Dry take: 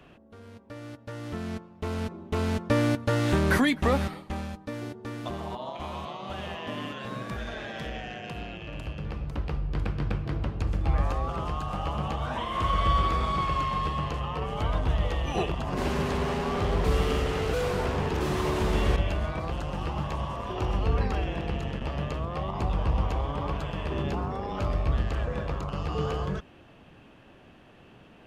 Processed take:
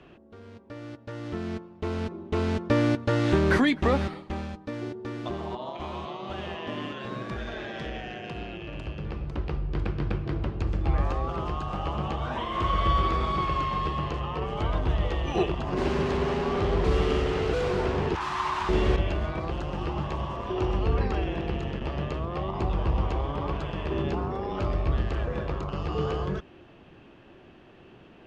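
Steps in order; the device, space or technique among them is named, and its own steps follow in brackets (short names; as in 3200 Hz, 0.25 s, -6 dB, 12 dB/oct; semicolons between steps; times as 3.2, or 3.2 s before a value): inside a cardboard box (LPF 5800 Hz 12 dB/oct; small resonant body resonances 360 Hz, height 8 dB); 18.15–18.69 resonant low shelf 680 Hz -13 dB, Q 3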